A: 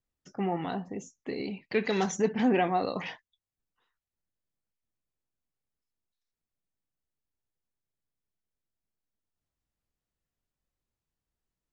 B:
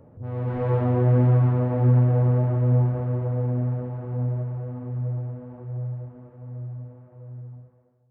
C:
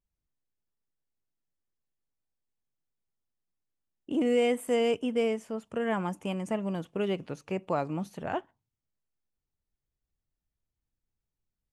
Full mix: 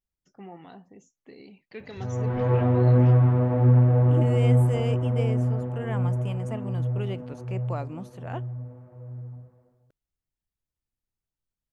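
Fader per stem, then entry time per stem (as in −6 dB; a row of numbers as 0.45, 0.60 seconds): −13.0, +0.5, −4.5 decibels; 0.00, 1.80, 0.00 seconds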